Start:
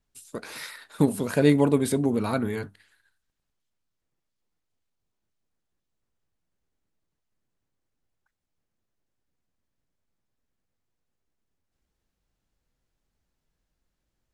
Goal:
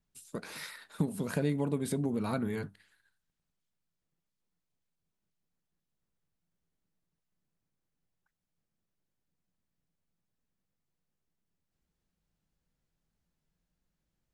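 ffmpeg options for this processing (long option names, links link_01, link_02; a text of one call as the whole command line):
ffmpeg -i in.wav -af "equalizer=frequency=170:width=3:gain=10,acompressor=threshold=-24dB:ratio=3,volume=-5dB" out.wav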